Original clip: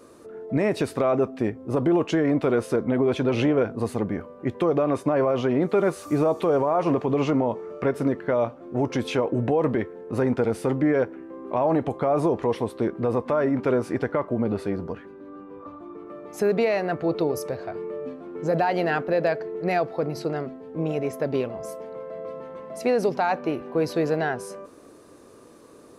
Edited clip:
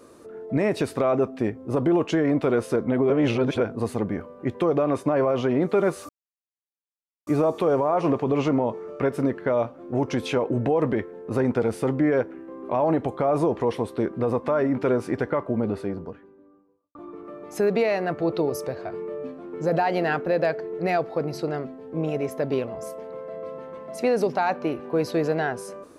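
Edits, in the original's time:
3.10–3.60 s: reverse
6.09 s: insert silence 1.18 s
14.27–15.77 s: studio fade out

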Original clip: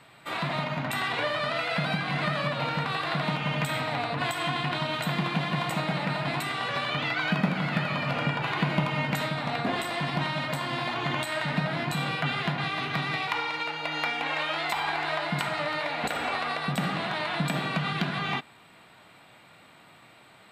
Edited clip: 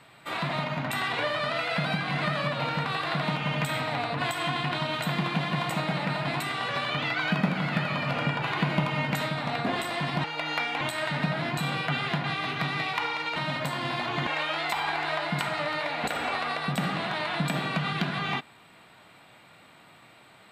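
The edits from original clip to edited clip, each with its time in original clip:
10.24–11.15 s: swap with 13.70–14.27 s

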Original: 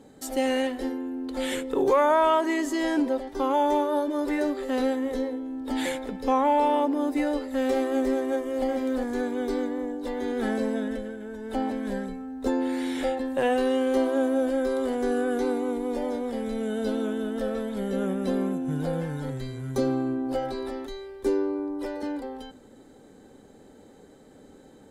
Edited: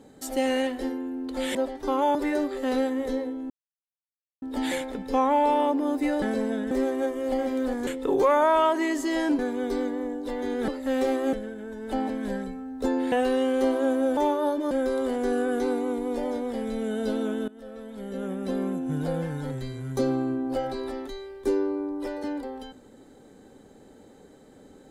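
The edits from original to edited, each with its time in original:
1.55–3.07 s: move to 9.17 s
3.67–4.21 s: move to 14.50 s
5.56 s: insert silence 0.92 s
7.36–8.01 s: swap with 10.46–10.95 s
12.74–13.45 s: delete
17.27–18.71 s: fade in, from -20 dB

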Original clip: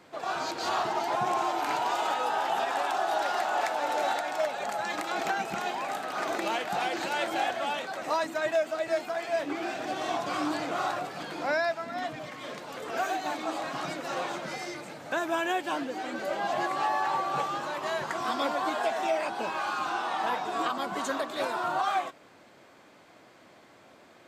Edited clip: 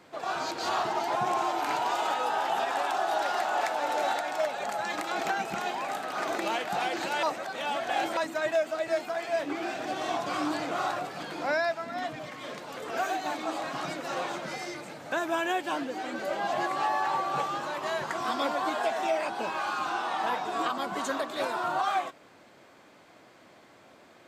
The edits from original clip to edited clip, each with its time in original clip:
7.23–8.17 s: reverse

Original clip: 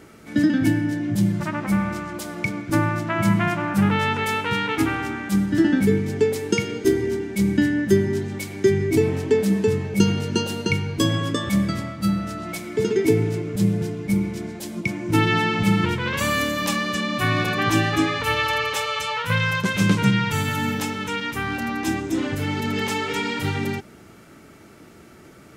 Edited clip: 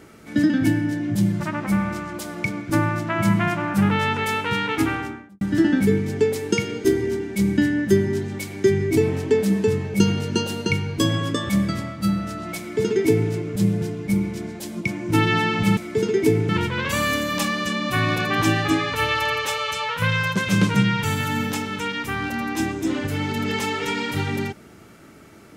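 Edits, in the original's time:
4.91–5.41 s: studio fade out
12.59–13.31 s: copy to 15.77 s

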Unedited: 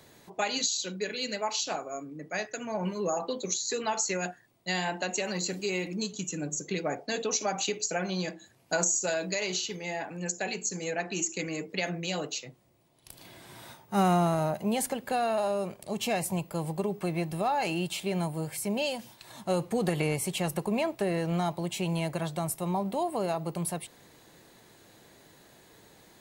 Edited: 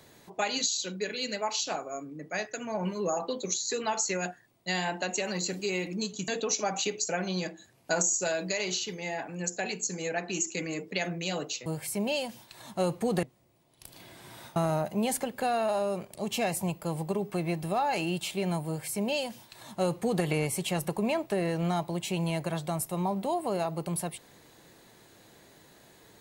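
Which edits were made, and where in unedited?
6.28–7.10 s: delete
13.81–14.25 s: delete
18.36–19.93 s: copy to 12.48 s

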